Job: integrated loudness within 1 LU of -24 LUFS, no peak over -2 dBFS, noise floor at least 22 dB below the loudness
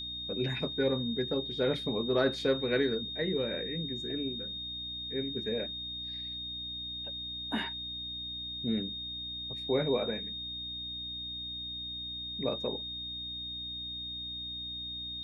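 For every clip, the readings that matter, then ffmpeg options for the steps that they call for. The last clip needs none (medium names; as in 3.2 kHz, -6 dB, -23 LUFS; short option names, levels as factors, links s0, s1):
hum 60 Hz; highest harmonic 300 Hz; hum level -48 dBFS; steady tone 3.7 kHz; tone level -37 dBFS; loudness -33.5 LUFS; peak level -14.5 dBFS; loudness target -24.0 LUFS
-> -af "bandreject=f=60:t=h:w=4,bandreject=f=120:t=h:w=4,bandreject=f=180:t=h:w=4,bandreject=f=240:t=h:w=4,bandreject=f=300:t=h:w=4"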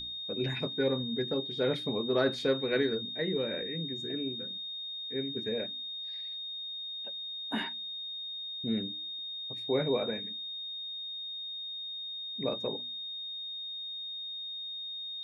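hum not found; steady tone 3.7 kHz; tone level -37 dBFS
-> -af "bandreject=f=3700:w=30"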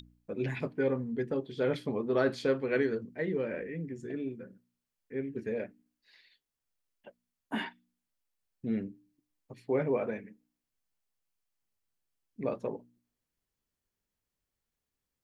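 steady tone not found; loudness -34.0 LUFS; peak level -15.0 dBFS; loudness target -24.0 LUFS
-> -af "volume=3.16"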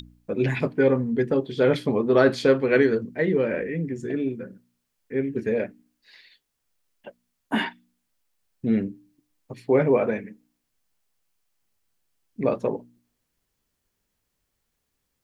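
loudness -24.0 LUFS; peak level -5.0 dBFS; noise floor -78 dBFS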